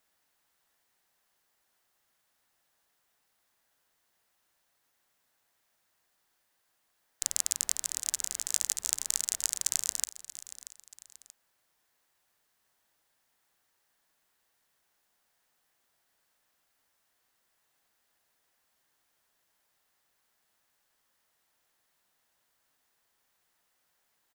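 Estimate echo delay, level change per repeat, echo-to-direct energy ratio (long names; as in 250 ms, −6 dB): 632 ms, −8.0 dB, −14.5 dB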